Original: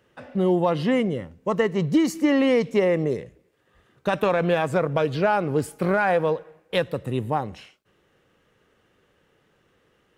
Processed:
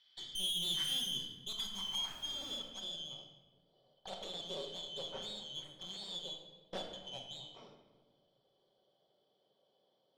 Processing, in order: four frequency bands reordered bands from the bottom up 3412; high-pass 98 Hz; treble shelf 2.2 kHz -4.5 dB; in parallel at +2 dB: compression, threshold -35 dBFS, peak gain reduction 16 dB; on the sum: wavefolder -13.5 dBFS; band-pass sweep 2 kHz -> 540 Hz, 0.92–2.43 s; 1.73–2.57 s: added noise pink -59 dBFS; valve stage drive 38 dB, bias 0.6; on a send at -1 dB: reverberation RT60 1.3 s, pre-delay 5 ms; on the sum: trim +1.5 dB

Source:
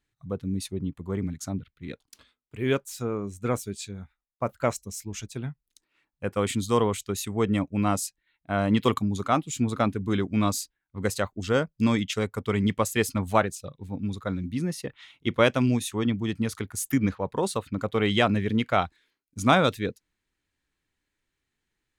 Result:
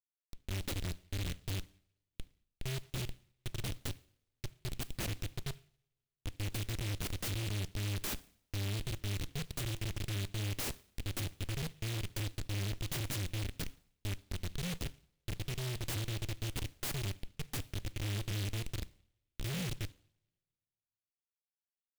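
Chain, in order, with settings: Chebyshev band-stop 170–4500 Hz, order 5; hum notches 60/120 Hz; feedback comb 130 Hz, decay 1.2 s, harmonics all, mix 60%; phase dispersion highs, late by 66 ms, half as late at 410 Hz; Schmitt trigger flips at -40 dBFS; two-slope reverb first 0.54 s, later 1.8 s, from -26 dB, DRR 14.5 dB; delay time shaken by noise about 2.8 kHz, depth 0.29 ms; trim +7 dB

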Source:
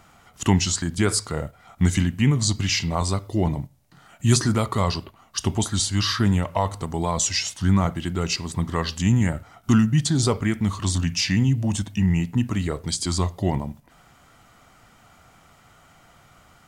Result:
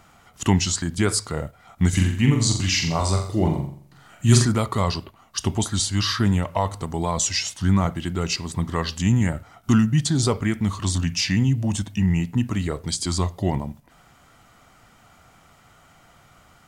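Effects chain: 1.89–4.45 s: flutter echo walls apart 7.4 m, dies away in 0.53 s

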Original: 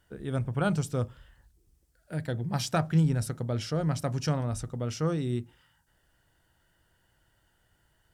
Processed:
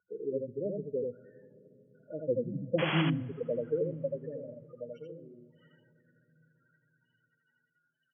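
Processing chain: low-pass that closes with the level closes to 360 Hz, closed at -25 dBFS; 2.23–3.25 s: tilt EQ -3.5 dB/octave; loudest bins only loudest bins 8; dynamic bell 2.5 kHz, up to +5 dB, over -58 dBFS, Q 1.4; high-pass sweep 450 Hz -> 1.4 kHz, 3.79–5.83 s; 2.78–3.02 s: painted sound noise 310–3400 Hz -34 dBFS; delay 83 ms -3 dB; on a send at -20 dB: reverberation RT60 3.5 s, pre-delay 3 ms

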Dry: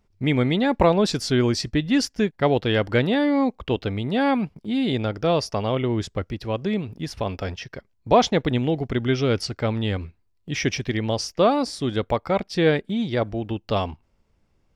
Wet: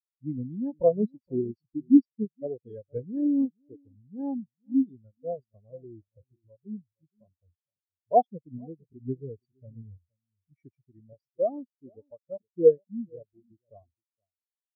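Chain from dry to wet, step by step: echo from a far wall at 80 m, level -9 dB; spectral contrast expander 4:1; trim -3 dB

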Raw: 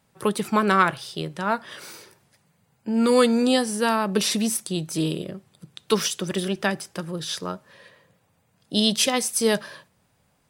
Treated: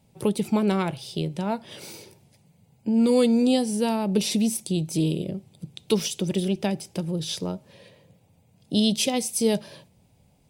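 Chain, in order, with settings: bass shelf 330 Hz +9 dB; in parallel at +2 dB: compression, threshold -27 dBFS, peak gain reduction 15.5 dB; on the sum: high-order bell 1.4 kHz -11 dB 1 oct; trim -7 dB

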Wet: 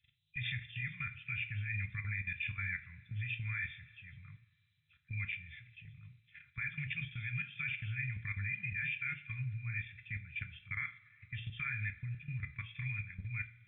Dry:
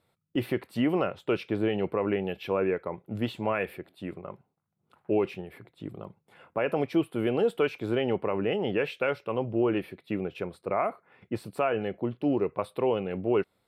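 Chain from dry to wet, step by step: knee-point frequency compression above 2.3 kHz 4:1; Chebyshev band-stop 130–1800 Hz, order 4; level held to a coarse grid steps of 15 dB; two-slope reverb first 0.32 s, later 2.2 s, from -20 dB, DRR 6.5 dB; trim +7 dB

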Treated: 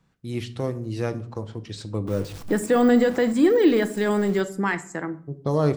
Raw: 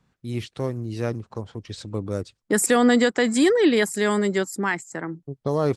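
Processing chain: 2.07–4.40 s: jump at every zero crossing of -32.5 dBFS; de-esser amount 85%; simulated room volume 660 m³, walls furnished, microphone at 0.69 m

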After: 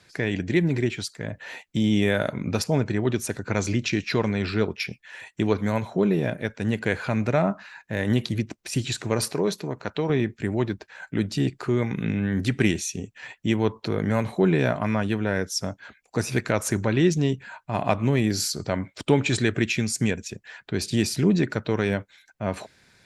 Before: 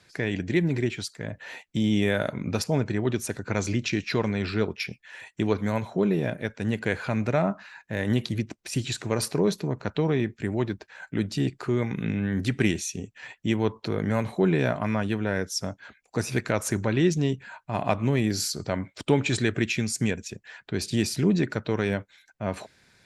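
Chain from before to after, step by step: 9.33–10.10 s: bass shelf 250 Hz -8.5 dB; trim +2 dB

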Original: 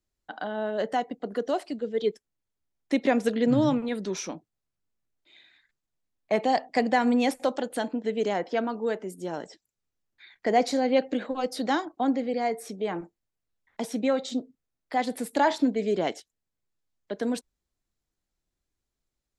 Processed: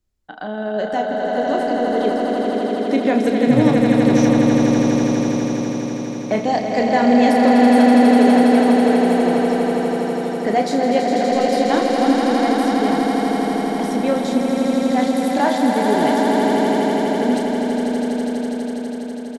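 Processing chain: bass shelf 210 Hz +9 dB; 4.24–6.34 s: waveshaping leveller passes 1; doubling 33 ms -7 dB; echo with a slow build-up 82 ms, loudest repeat 8, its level -6 dB; trim +2 dB

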